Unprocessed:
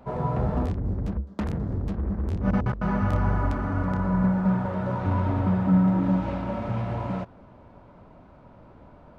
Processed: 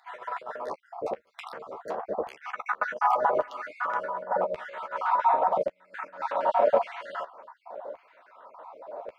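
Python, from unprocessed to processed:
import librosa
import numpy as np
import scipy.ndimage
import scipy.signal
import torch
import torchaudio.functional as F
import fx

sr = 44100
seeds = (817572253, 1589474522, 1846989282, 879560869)

y = fx.spec_dropout(x, sr, seeds[0], share_pct=46)
y = fx.peak_eq(y, sr, hz=510.0, db=13.5, octaves=1.3)
y = fx.over_compress(y, sr, threshold_db=-23.0, ratio=-0.5)
y = fx.filter_lfo_highpass(y, sr, shape='saw_down', hz=0.88, low_hz=540.0, high_hz=2400.0, q=2.1)
y = fx.doubler(y, sr, ms=13.0, db=-10.0)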